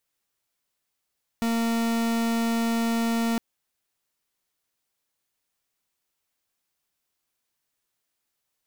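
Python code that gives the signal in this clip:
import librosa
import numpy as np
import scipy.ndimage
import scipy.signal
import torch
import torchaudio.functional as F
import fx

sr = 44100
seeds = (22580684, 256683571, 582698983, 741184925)

y = fx.pulse(sr, length_s=1.96, hz=230.0, level_db=-24.5, duty_pct=43)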